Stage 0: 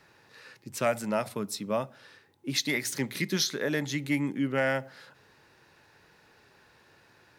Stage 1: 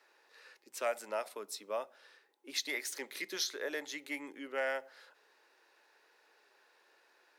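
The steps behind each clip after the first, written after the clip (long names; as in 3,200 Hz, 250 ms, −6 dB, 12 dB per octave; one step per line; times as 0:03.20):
high-pass filter 380 Hz 24 dB per octave
level −7 dB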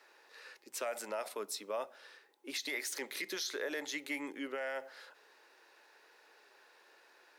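brickwall limiter −33 dBFS, peak gain reduction 11.5 dB
level +4.5 dB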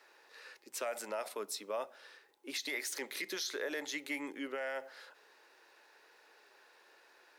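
surface crackle 38 per second −63 dBFS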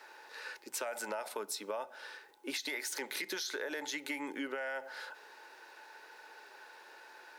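hollow resonant body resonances 880/1,500 Hz, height 10 dB
downward compressor 6 to 1, threshold −42 dBFS, peak gain reduction 10 dB
level +6.5 dB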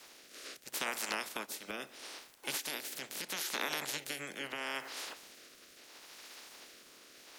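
ceiling on every frequency bin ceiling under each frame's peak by 28 dB
rotating-speaker cabinet horn 0.75 Hz
level +3 dB
Ogg Vorbis 192 kbit/s 48,000 Hz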